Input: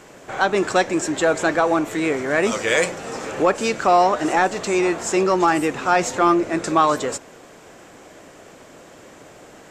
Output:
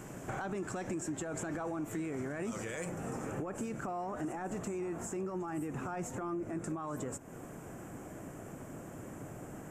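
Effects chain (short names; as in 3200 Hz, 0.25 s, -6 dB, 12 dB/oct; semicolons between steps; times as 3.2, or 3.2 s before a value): limiter -17.5 dBFS, peak gain reduction 12 dB; graphic EQ 125/500/1000/2000/4000 Hz +5/-8/-5/-6/-11 dB; compressor 5:1, threshold -39 dBFS, peak gain reduction 13.5 dB; bell 4400 Hz -5 dB 1.4 oct, from 2.85 s -13 dB; gain +3 dB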